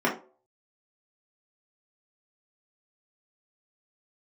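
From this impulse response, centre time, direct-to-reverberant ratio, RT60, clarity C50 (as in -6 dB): 22 ms, -5.0 dB, 0.40 s, 9.5 dB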